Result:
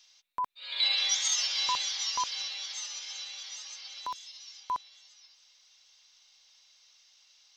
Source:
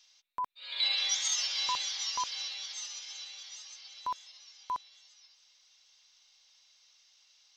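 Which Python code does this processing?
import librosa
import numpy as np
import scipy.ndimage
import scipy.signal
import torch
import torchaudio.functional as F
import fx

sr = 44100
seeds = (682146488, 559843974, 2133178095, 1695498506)

y = fx.band_squash(x, sr, depth_pct=40, at=(2.4, 4.6))
y = y * librosa.db_to_amplitude(2.5)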